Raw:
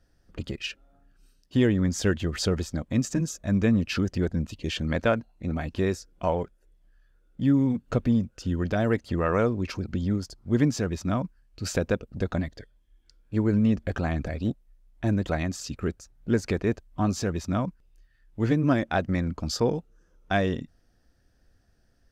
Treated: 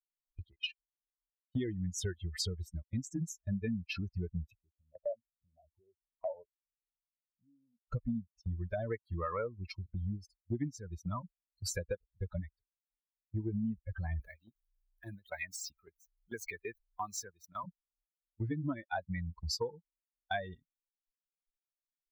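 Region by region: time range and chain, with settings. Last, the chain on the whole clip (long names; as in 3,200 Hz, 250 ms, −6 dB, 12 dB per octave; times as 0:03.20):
0:04.51–0:07.79: downward compressor 5 to 1, threshold −33 dBFS + envelope-controlled low-pass 660–3,100 Hz down, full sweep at −34.5 dBFS
0:14.20–0:17.64: converter with a step at zero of −40 dBFS + low-shelf EQ 410 Hz −8.5 dB + multiband upward and downward compressor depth 40%
whole clip: spectral dynamics exaggerated over time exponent 3; noise gate −52 dBFS, range −14 dB; downward compressor 6 to 1, threshold −39 dBFS; level +5.5 dB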